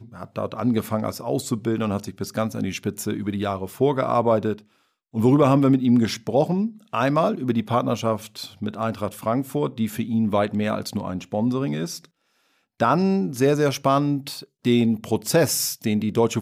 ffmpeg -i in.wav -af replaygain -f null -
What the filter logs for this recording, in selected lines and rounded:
track_gain = +2.5 dB
track_peak = 0.308